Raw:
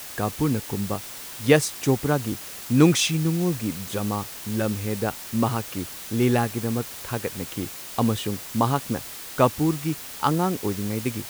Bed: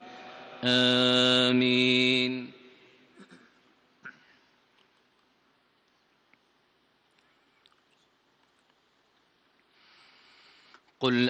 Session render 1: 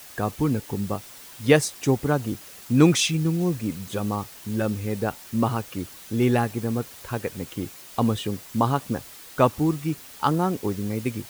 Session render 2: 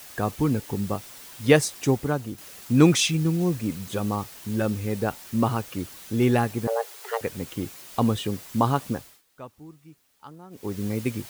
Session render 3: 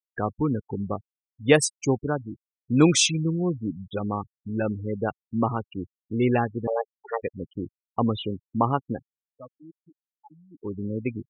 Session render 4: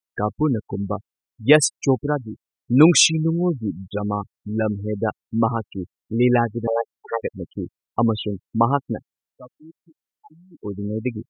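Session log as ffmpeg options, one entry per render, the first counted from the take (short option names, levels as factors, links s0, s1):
-af "afftdn=nr=7:nf=-38"
-filter_complex "[0:a]asettb=1/sr,asplit=3[s0][s1][s2];[s0]atrim=end=6.674[s3];[s1]atrim=start=6.67:end=7.21,asetpts=PTS-STARTPTS,afade=t=in:d=0.004:c=qsin,afade=t=out:st=0.536:d=0.004:c=qsin,afreqshift=340[s4];[s2]atrim=start=7.206[s5];[s3][s4]acrossfade=d=0.004:c1=hsin:c2=qsin[s6];[s6][s5]acrossfade=d=0.004:c1=qsin:c2=hsin,asplit=4[s7][s8][s9][s10];[s7]atrim=end=2.38,asetpts=PTS-STARTPTS,afade=t=out:st=1.84:d=0.54:silence=0.421697[s11];[s8]atrim=start=2.38:end=9.22,asetpts=PTS-STARTPTS,afade=t=in:d=0.004:c=hsin:silence=0.421697,afade=t=out:st=6.5:d=0.34:silence=0.0749894[s12];[s9]atrim=start=9.22:end=10.5,asetpts=PTS-STARTPTS,volume=0.075[s13];[s10]atrim=start=10.5,asetpts=PTS-STARTPTS,afade=t=in:d=0.34:silence=0.0749894[s14];[s11][s12][s13][s14]concat=n=4:v=0:a=1"
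-af "afftfilt=real='re*gte(hypot(re,im),0.0501)':imag='im*gte(hypot(re,im),0.0501)':win_size=1024:overlap=0.75,bass=f=250:g=-3,treble=f=4000:g=5"
-af "volume=1.68,alimiter=limit=0.794:level=0:latency=1"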